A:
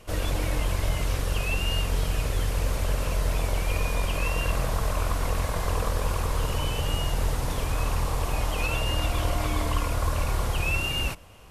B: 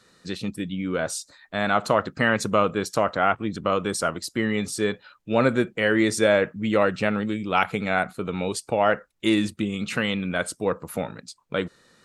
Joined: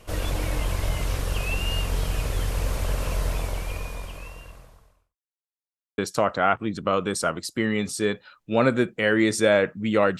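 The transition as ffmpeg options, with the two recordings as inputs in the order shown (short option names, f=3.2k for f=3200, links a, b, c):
-filter_complex "[0:a]apad=whole_dur=10.19,atrim=end=10.19,asplit=2[a][b];[a]atrim=end=5.17,asetpts=PTS-STARTPTS,afade=t=out:st=3.23:d=1.94:c=qua[c];[b]atrim=start=5.17:end=5.98,asetpts=PTS-STARTPTS,volume=0[d];[1:a]atrim=start=2.77:end=6.98,asetpts=PTS-STARTPTS,afade=t=in:d=0.004:c=hsin[e];[c][d][e]concat=n=3:v=0:a=1"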